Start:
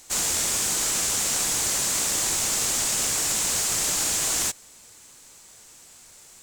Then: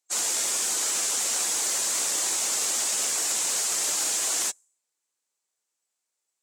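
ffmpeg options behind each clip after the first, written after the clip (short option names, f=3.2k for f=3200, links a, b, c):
-af "afftdn=nr=32:nf=-37,highpass=360,volume=-1dB"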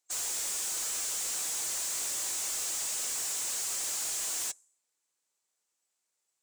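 -af "volume=33dB,asoftclip=hard,volume=-33dB"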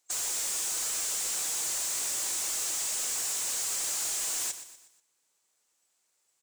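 -filter_complex "[0:a]acompressor=threshold=-41dB:ratio=3,asplit=2[a][b];[b]aecho=0:1:121|242|363|484:0.251|0.111|0.0486|0.0214[c];[a][c]amix=inputs=2:normalize=0,volume=7dB"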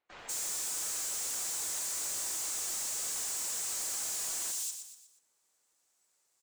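-filter_complex "[0:a]volume=35dB,asoftclip=hard,volume=-35dB,acrossover=split=2900[a][b];[b]adelay=190[c];[a][c]amix=inputs=2:normalize=0"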